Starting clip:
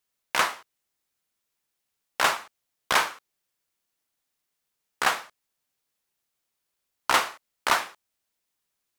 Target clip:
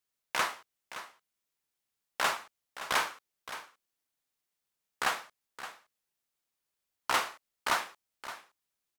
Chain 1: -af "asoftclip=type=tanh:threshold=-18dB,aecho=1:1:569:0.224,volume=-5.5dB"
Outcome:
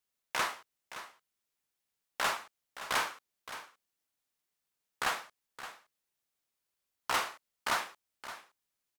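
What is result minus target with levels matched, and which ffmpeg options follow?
soft clipping: distortion +8 dB
-af "asoftclip=type=tanh:threshold=-11.5dB,aecho=1:1:569:0.224,volume=-5.5dB"

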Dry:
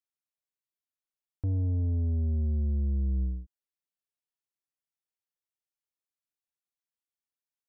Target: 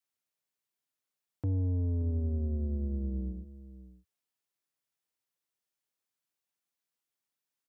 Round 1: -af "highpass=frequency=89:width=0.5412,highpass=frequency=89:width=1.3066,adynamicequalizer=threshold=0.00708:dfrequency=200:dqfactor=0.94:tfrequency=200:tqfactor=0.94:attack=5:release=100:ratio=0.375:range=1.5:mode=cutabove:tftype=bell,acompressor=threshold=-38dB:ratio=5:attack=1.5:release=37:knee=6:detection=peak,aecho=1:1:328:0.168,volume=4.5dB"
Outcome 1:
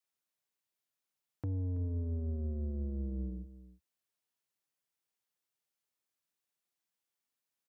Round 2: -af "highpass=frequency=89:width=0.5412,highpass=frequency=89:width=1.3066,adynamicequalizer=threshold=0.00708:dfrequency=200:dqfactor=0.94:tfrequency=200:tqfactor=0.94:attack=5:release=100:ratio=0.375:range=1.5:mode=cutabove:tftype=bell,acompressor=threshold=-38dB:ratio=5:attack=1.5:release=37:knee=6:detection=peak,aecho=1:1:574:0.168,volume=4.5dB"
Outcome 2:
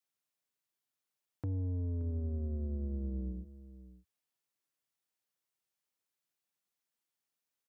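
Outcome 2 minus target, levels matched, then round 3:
downward compressor: peak gain reduction +5.5 dB
-af "highpass=frequency=89:width=0.5412,highpass=frequency=89:width=1.3066,adynamicequalizer=threshold=0.00708:dfrequency=200:dqfactor=0.94:tfrequency=200:tqfactor=0.94:attack=5:release=100:ratio=0.375:range=1.5:mode=cutabove:tftype=bell,acompressor=threshold=-31dB:ratio=5:attack=1.5:release=37:knee=6:detection=peak,aecho=1:1:574:0.168,volume=4.5dB"

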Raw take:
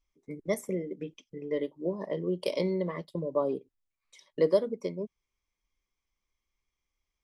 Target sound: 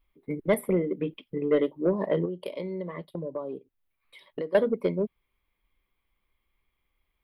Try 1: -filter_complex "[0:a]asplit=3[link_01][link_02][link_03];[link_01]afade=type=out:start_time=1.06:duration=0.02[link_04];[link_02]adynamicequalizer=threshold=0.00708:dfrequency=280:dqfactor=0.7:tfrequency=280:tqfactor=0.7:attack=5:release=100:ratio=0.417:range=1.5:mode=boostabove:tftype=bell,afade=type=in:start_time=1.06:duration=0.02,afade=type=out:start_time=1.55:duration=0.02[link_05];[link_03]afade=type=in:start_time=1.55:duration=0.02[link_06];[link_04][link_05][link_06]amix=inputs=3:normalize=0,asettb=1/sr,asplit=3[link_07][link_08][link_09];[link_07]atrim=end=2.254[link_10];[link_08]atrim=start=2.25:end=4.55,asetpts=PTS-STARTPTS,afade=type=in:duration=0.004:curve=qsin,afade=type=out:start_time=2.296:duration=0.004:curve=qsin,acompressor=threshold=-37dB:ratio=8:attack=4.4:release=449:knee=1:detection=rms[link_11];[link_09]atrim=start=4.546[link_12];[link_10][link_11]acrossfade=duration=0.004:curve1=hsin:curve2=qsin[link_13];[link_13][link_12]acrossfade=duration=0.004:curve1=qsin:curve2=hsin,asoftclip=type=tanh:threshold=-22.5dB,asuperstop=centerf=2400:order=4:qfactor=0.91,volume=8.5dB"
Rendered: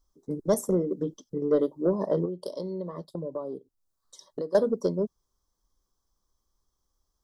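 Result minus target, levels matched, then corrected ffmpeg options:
2,000 Hz band −10.0 dB
-filter_complex "[0:a]asplit=3[link_01][link_02][link_03];[link_01]afade=type=out:start_time=1.06:duration=0.02[link_04];[link_02]adynamicequalizer=threshold=0.00708:dfrequency=280:dqfactor=0.7:tfrequency=280:tqfactor=0.7:attack=5:release=100:ratio=0.417:range=1.5:mode=boostabove:tftype=bell,afade=type=in:start_time=1.06:duration=0.02,afade=type=out:start_time=1.55:duration=0.02[link_05];[link_03]afade=type=in:start_time=1.55:duration=0.02[link_06];[link_04][link_05][link_06]amix=inputs=3:normalize=0,asettb=1/sr,asplit=3[link_07][link_08][link_09];[link_07]atrim=end=2.254[link_10];[link_08]atrim=start=2.25:end=4.55,asetpts=PTS-STARTPTS,afade=type=in:duration=0.004:curve=qsin,afade=type=out:start_time=2.296:duration=0.004:curve=qsin,acompressor=threshold=-37dB:ratio=8:attack=4.4:release=449:knee=1:detection=rms[link_11];[link_09]atrim=start=4.546[link_12];[link_10][link_11]acrossfade=duration=0.004:curve1=hsin:curve2=qsin[link_13];[link_13][link_12]acrossfade=duration=0.004:curve1=qsin:curve2=hsin,asoftclip=type=tanh:threshold=-22.5dB,asuperstop=centerf=6400:order=4:qfactor=0.91,volume=8.5dB"

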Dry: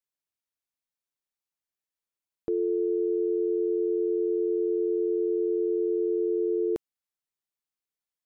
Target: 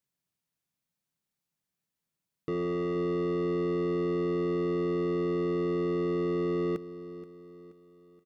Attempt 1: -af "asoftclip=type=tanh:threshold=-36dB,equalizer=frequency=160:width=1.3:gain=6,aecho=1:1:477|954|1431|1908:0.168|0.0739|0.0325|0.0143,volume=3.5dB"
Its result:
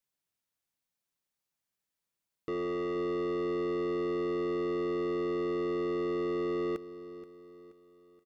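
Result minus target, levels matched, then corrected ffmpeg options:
125 Hz band −7.5 dB
-af "asoftclip=type=tanh:threshold=-36dB,equalizer=frequency=160:width=1.3:gain=17,aecho=1:1:477|954|1431|1908:0.168|0.0739|0.0325|0.0143,volume=3.5dB"

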